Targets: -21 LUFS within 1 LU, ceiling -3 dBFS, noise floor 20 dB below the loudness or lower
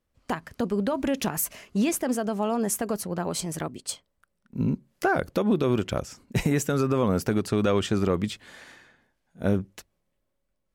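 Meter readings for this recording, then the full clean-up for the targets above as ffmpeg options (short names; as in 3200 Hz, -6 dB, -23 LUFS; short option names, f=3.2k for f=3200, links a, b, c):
loudness -27.0 LUFS; peak -13.5 dBFS; loudness target -21.0 LUFS
-> -af "volume=6dB"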